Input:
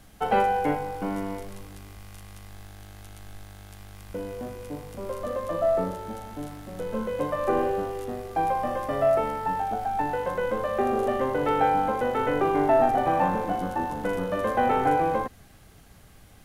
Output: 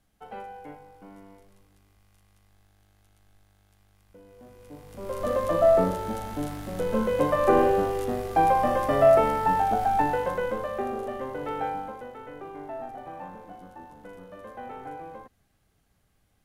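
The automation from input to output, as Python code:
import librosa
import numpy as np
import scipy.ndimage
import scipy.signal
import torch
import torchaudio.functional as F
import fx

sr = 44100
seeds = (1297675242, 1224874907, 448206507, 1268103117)

y = fx.gain(x, sr, db=fx.line((4.23, -18.0), (4.87, -6.5), (5.29, 4.5), (9.93, 4.5), (11.05, -8.0), (11.67, -8.0), (12.19, -17.0)))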